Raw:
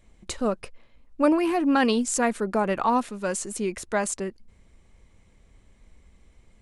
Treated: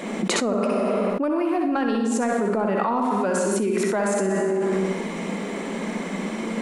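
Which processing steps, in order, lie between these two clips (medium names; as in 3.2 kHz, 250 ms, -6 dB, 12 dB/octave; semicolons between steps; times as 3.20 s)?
elliptic high-pass 190 Hz, stop band 40 dB; treble shelf 2.7 kHz -10.5 dB; in parallel at -10.5 dB: saturation -19.5 dBFS, distortion -13 dB; on the sum: flutter echo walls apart 10.8 m, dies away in 0.48 s; on a send at -4 dB: reverberation RT60 1.0 s, pre-delay 52 ms; on the sum: level flattener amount 100%; trim -6.5 dB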